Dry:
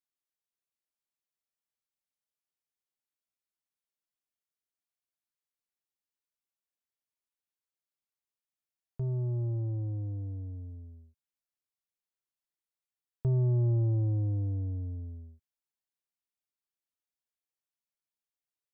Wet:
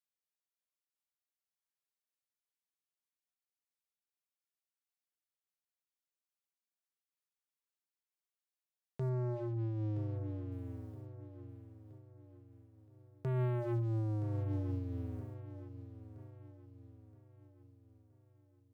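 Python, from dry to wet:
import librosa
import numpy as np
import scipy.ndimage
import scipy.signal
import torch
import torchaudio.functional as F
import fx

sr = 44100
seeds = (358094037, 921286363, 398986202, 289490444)

y = scipy.signal.sosfilt(scipy.signal.butter(2, 110.0, 'highpass', fs=sr, output='sos'), x)
y = fx.low_shelf(y, sr, hz=250.0, db=-12.0)
y = fx.hum_notches(y, sr, base_hz=60, count=6)
y = fx.leveller(y, sr, passes=3)
y = fx.air_absorb(y, sr, metres=80.0, at=(9.09, 10.52))
y = fx.echo_feedback(y, sr, ms=971, feedback_pct=45, wet_db=-12)
y = fx.am_noise(y, sr, seeds[0], hz=5.7, depth_pct=55)
y = F.gain(torch.from_numpy(y), 3.5).numpy()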